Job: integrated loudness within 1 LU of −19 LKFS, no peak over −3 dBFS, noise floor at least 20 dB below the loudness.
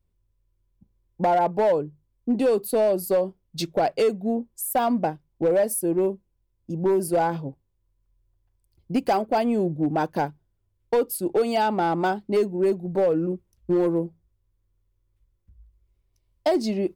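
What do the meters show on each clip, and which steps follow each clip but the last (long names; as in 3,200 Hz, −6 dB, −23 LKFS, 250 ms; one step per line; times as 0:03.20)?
share of clipped samples 1.4%; peaks flattened at −15.5 dBFS; integrated loudness −24.0 LKFS; sample peak −15.5 dBFS; target loudness −19.0 LKFS
→ clipped peaks rebuilt −15.5 dBFS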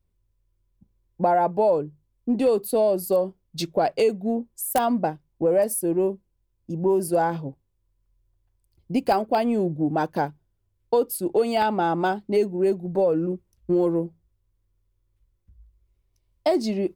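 share of clipped samples 0.0%; integrated loudness −24.0 LKFS; sample peak −6.5 dBFS; target loudness −19.0 LKFS
→ level +5 dB
brickwall limiter −3 dBFS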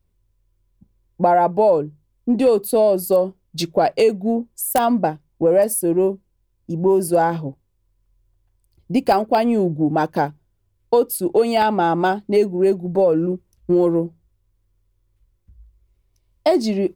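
integrated loudness −19.0 LKFS; sample peak −3.0 dBFS; background noise floor −67 dBFS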